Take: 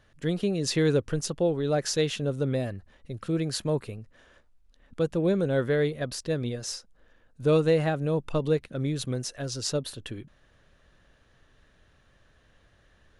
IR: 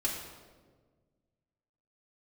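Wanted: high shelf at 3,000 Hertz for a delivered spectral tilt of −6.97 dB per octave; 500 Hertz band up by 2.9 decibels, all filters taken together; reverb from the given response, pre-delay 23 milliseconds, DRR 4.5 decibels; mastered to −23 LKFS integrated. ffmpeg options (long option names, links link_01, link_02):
-filter_complex "[0:a]equalizer=frequency=500:width_type=o:gain=3.5,highshelf=frequency=3000:gain=-8.5,asplit=2[link_01][link_02];[1:a]atrim=start_sample=2205,adelay=23[link_03];[link_02][link_03]afir=irnorm=-1:irlink=0,volume=-9.5dB[link_04];[link_01][link_04]amix=inputs=2:normalize=0,volume=2dB"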